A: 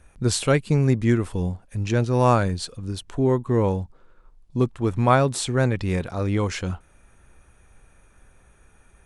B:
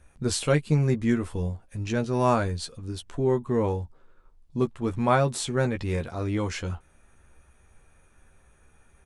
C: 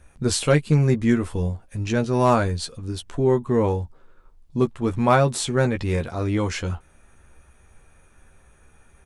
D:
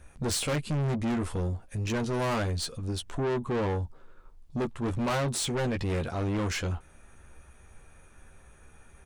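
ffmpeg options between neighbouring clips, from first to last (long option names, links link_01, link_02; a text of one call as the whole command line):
ffmpeg -i in.wav -filter_complex "[0:a]asplit=2[link_01][link_02];[link_02]adelay=13,volume=-6dB[link_03];[link_01][link_03]amix=inputs=2:normalize=0,volume=-4.5dB" out.wav
ffmpeg -i in.wav -af "volume=12.5dB,asoftclip=hard,volume=-12.5dB,volume=4.5dB" out.wav
ffmpeg -i in.wav -af "asoftclip=type=tanh:threshold=-26dB" out.wav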